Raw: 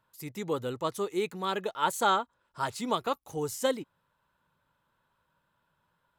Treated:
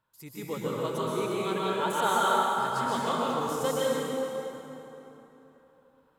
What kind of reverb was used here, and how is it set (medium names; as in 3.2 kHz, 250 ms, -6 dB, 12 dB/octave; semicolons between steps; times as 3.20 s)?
plate-style reverb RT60 3.5 s, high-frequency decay 0.65×, pre-delay 110 ms, DRR -7 dB; trim -5 dB